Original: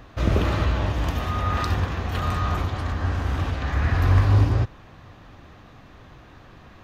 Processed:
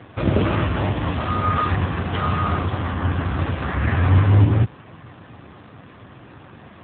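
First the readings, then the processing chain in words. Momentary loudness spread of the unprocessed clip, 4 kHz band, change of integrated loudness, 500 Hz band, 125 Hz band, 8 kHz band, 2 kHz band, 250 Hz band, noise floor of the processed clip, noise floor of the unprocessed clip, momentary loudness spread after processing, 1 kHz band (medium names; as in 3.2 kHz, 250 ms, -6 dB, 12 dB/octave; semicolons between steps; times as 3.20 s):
8 LU, +1.0 dB, +3.0 dB, +4.0 dB, +3.0 dB, no reading, +3.0 dB, +6.0 dB, -45 dBFS, -48 dBFS, 8 LU, +4.5 dB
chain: in parallel at -8 dB: hard clipper -20.5 dBFS, distortion -9 dB; on the sum: trim +4.5 dB; AMR-NB 7.4 kbps 8 kHz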